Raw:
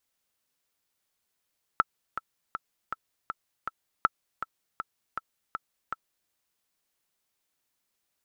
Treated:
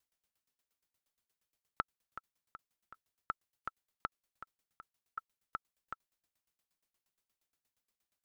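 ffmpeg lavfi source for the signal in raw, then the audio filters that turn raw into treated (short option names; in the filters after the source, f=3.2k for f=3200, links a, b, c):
-f lavfi -i "aevalsrc='pow(10,(-7.5-11.5*gte(mod(t,6*60/160),60/160))/20)*sin(2*PI*1320*mod(t,60/160))*exp(-6.91*mod(t,60/160)/0.03)':d=4.5:s=44100"
-af "lowshelf=f=150:g=5,acompressor=threshold=-24dB:ratio=6,aeval=exprs='val(0)*pow(10,-22*if(lt(mod(8.5*n/s,1),2*abs(8.5)/1000),1-mod(8.5*n/s,1)/(2*abs(8.5)/1000),(mod(8.5*n/s,1)-2*abs(8.5)/1000)/(1-2*abs(8.5)/1000))/20)':c=same"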